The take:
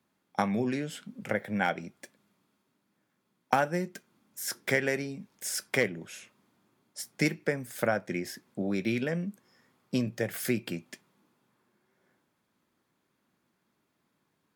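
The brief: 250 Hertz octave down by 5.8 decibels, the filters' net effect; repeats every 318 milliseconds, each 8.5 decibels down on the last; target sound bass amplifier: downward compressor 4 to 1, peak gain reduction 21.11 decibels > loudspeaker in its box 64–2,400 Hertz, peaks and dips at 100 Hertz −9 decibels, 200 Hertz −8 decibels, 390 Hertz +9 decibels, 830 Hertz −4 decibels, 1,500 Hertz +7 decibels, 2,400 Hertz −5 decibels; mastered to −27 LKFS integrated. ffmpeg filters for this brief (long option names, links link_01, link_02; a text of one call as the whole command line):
ffmpeg -i in.wav -af "equalizer=frequency=250:width_type=o:gain=-8.5,aecho=1:1:318|636|954|1272:0.376|0.143|0.0543|0.0206,acompressor=threshold=-46dB:ratio=4,highpass=frequency=64:width=0.5412,highpass=frequency=64:width=1.3066,equalizer=frequency=100:width_type=q:width=4:gain=-9,equalizer=frequency=200:width_type=q:width=4:gain=-8,equalizer=frequency=390:width_type=q:width=4:gain=9,equalizer=frequency=830:width_type=q:width=4:gain=-4,equalizer=frequency=1500:width_type=q:width=4:gain=7,equalizer=frequency=2400:width_type=q:width=4:gain=-5,lowpass=frequency=2400:width=0.5412,lowpass=frequency=2400:width=1.3066,volume=20.5dB" out.wav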